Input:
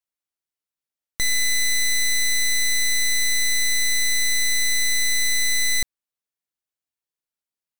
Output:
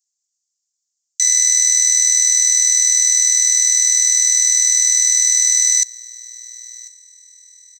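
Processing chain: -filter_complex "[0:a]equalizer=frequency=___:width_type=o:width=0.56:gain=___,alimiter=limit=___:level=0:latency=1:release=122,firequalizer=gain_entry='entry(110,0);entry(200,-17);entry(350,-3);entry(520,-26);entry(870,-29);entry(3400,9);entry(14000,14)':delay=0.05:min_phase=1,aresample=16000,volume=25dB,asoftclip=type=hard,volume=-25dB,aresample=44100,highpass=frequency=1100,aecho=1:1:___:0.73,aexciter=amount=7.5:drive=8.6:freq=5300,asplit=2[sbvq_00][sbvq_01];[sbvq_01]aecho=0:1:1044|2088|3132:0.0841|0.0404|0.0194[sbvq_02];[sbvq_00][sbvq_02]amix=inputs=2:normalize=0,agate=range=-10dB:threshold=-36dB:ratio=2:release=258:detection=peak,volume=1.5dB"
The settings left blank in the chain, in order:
1800, 14.5, -15.5dB, 4.1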